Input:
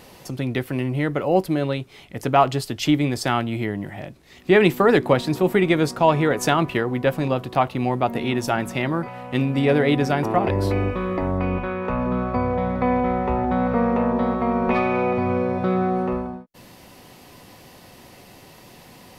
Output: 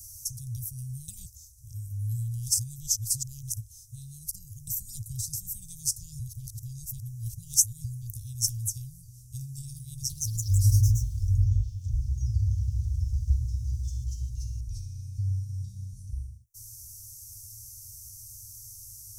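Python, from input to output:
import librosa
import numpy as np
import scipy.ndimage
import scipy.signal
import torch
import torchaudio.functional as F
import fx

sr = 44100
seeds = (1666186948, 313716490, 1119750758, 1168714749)

y = fx.echo_pitch(x, sr, ms=182, semitones=2, count=3, db_per_echo=-3.0, at=(9.91, 14.98))
y = fx.edit(y, sr, fx.reverse_span(start_s=1.08, length_s=3.59),
    fx.reverse_span(start_s=6.19, length_s=1.65), tone=tone)
y = scipy.signal.sosfilt(scipy.signal.cheby1(5, 1.0, [110.0, 5800.0], 'bandstop', fs=sr, output='sos'), y)
y = fx.tilt_shelf(y, sr, db=-3.5, hz=650.0)
y = F.gain(torch.from_numpy(y), 7.5).numpy()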